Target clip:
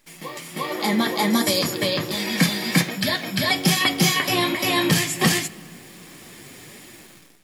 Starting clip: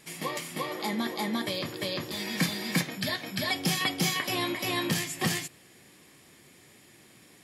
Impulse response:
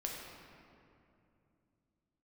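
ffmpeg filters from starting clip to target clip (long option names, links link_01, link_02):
-filter_complex "[0:a]asettb=1/sr,asplit=3[link_01][link_02][link_03];[link_01]atrim=end=1.304[link_04];[link_02]atrim=start=1.3:end=1.74,asetpts=PTS-STARTPTS,afade=type=in:duration=0.004:curve=qsin,afade=type=out:start_time=0.436:duration=0.004:curve=qsin,highshelf=frequency=4600:width_type=q:width=1.5:gain=8[link_05];[link_03]atrim=start=1.736[link_06];[link_04][link_05]acrossfade=duration=0.004:curve1=hsin:curve2=qsin[link_07];[link_07][link_06]acrossfade=duration=0.004:curve1=qsin:curve2=hsin,dynaudnorm=framelen=200:gausssize=7:maxgain=16dB,acrusher=bits=8:dc=4:mix=0:aa=0.000001,flanger=delay=2.9:depth=4.8:regen=-49:speed=1.3:shape=triangular,asplit=2[link_08][link_09];[1:a]atrim=start_sample=2205,asetrate=48510,aresample=44100[link_10];[link_09][link_10]afir=irnorm=-1:irlink=0,volume=-15.5dB[link_11];[link_08][link_11]amix=inputs=2:normalize=0"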